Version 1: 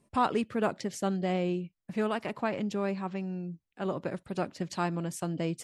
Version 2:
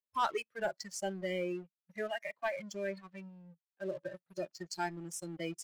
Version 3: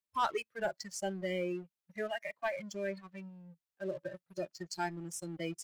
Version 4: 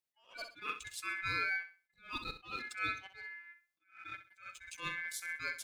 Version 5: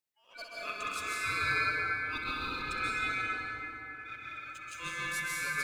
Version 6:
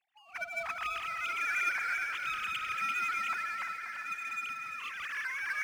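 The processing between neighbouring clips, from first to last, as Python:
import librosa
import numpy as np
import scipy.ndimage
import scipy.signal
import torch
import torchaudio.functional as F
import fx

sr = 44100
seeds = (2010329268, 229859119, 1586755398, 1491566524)

y1 = fx.weighting(x, sr, curve='A')
y1 = fx.noise_reduce_blind(y1, sr, reduce_db=23)
y1 = fx.leveller(y1, sr, passes=2)
y1 = y1 * 10.0 ** (-7.0 / 20.0)
y2 = fx.peak_eq(y1, sr, hz=64.0, db=5.0, octaves=2.3)
y3 = fx.room_flutter(y2, sr, wall_m=11.1, rt60_s=0.34)
y3 = y3 * np.sin(2.0 * np.pi * 1900.0 * np.arange(len(y3)) / sr)
y3 = fx.attack_slew(y3, sr, db_per_s=170.0)
y3 = y3 * 10.0 ** (3.0 / 20.0)
y4 = fx.rev_plate(y3, sr, seeds[0], rt60_s=3.7, hf_ratio=0.45, predelay_ms=120, drr_db=-7.0)
y5 = fx.sine_speech(y4, sr)
y5 = fx.power_curve(y5, sr, exponent=0.7)
y5 = fx.echo_feedback(y5, sr, ms=345, feedback_pct=57, wet_db=-9.5)
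y5 = y5 * 10.0 ** (-5.0 / 20.0)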